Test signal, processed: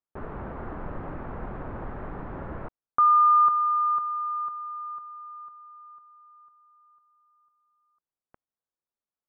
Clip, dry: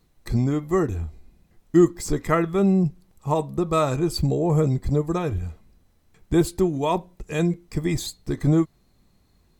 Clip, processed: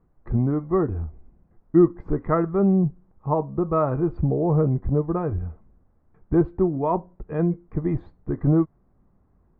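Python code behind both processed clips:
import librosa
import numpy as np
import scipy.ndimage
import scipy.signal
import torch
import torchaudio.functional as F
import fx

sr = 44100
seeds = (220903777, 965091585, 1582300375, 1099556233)

y = scipy.signal.sosfilt(scipy.signal.butter(4, 1400.0, 'lowpass', fs=sr, output='sos'), x)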